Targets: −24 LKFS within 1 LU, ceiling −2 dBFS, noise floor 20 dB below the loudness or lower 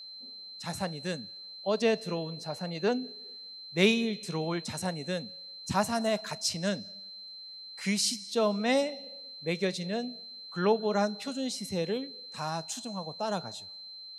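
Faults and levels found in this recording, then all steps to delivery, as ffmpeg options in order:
interfering tone 4,100 Hz; level of the tone −43 dBFS; integrated loudness −31.5 LKFS; sample peak −10.5 dBFS; target loudness −24.0 LKFS
→ -af "bandreject=frequency=4100:width=30"
-af "volume=7.5dB"

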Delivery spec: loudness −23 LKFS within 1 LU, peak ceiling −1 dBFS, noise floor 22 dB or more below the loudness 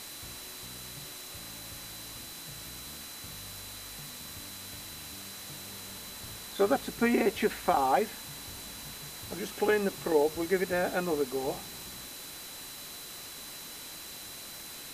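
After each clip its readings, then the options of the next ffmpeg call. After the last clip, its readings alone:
interfering tone 4,000 Hz; level of the tone −49 dBFS; background noise floor −44 dBFS; target noise floor −56 dBFS; integrated loudness −34.0 LKFS; sample peak −10.5 dBFS; target loudness −23.0 LKFS
→ -af "bandreject=frequency=4000:width=30"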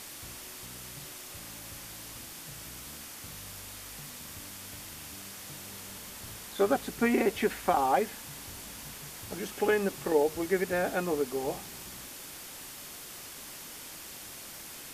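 interfering tone none found; background noise floor −45 dBFS; target noise floor −56 dBFS
→ -af "afftdn=noise_reduction=11:noise_floor=-45"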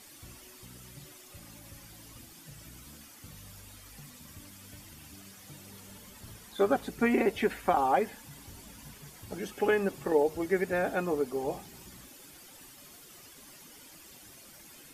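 background noise floor −53 dBFS; integrated loudness −29.5 LKFS; sample peak −10.5 dBFS; target loudness −23.0 LKFS
→ -af "volume=6.5dB"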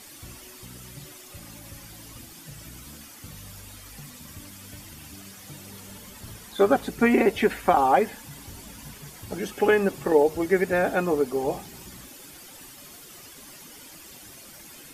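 integrated loudness −23.0 LKFS; sample peak −4.0 dBFS; background noise floor −46 dBFS

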